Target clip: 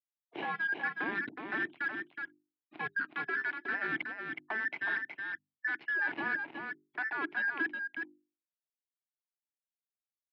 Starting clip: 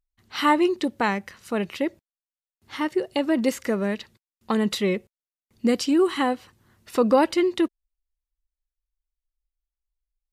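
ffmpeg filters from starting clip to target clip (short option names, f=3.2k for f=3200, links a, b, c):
-af "afftfilt=real='real(if(between(b,1,1012),(2*floor((b-1)/92)+1)*92-b,b),0)':imag='imag(if(between(b,1,1012),(2*floor((b-1)/92)+1)*92-b,b),0)*if(between(b,1,1012),-1,1)':win_size=2048:overlap=0.75,afftfilt=real='re*gte(hypot(re,im),0.02)':imag='im*gte(hypot(re,im),0.02)':win_size=1024:overlap=0.75,equalizer=f=370:w=0.89:g=7.5,bandreject=f=50:t=h:w=6,bandreject=f=100:t=h:w=6,bandreject=f=150:t=h:w=6,bandreject=f=200:t=h:w=6,bandreject=f=250:t=h:w=6,bandreject=f=300:t=h:w=6,bandreject=f=350:t=h:w=6,bandreject=f=400:t=h:w=6,alimiter=limit=-16.5dB:level=0:latency=1:release=143,areverse,acompressor=threshold=-36dB:ratio=10,areverse,asoftclip=type=tanh:threshold=-30dB,aeval=exprs='0.0299*(cos(1*acos(clip(val(0)/0.0299,-1,1)))-cos(1*PI/2))+0.00668*(cos(7*acos(clip(val(0)/0.0299,-1,1)))-cos(7*PI/2))':c=same,adynamicsmooth=sensitivity=2.5:basefreq=1.4k,highpass=f=170:w=0.5412,highpass=f=170:w=1.3066,equalizer=f=200:t=q:w=4:g=-6,equalizer=f=320:t=q:w=4:g=9,equalizer=f=520:t=q:w=4:g=-10,equalizer=f=1.2k:t=q:w=4:g=-5,equalizer=f=2.3k:t=q:w=4:g=7,lowpass=f=3.5k:w=0.5412,lowpass=f=3.5k:w=1.3066,aecho=1:1:369:0.531,volume=7dB"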